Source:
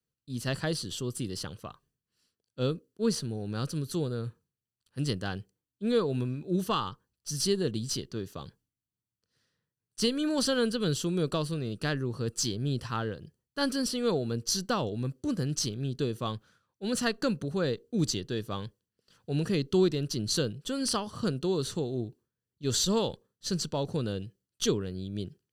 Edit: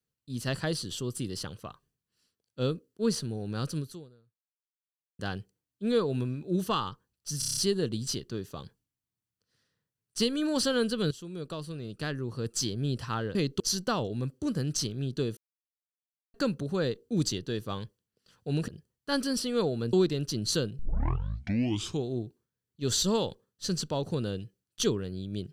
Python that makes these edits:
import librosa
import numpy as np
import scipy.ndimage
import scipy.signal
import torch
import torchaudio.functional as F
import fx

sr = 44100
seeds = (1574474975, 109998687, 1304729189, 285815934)

y = fx.edit(x, sr, fx.fade_out_span(start_s=3.79, length_s=1.4, curve='exp'),
    fx.stutter(start_s=7.39, slice_s=0.03, count=7),
    fx.fade_in_from(start_s=10.93, length_s=1.6, floor_db=-14.5),
    fx.swap(start_s=13.17, length_s=1.25, other_s=19.5, other_length_s=0.25),
    fx.silence(start_s=16.19, length_s=0.97),
    fx.tape_start(start_s=20.61, length_s=1.27), tone=tone)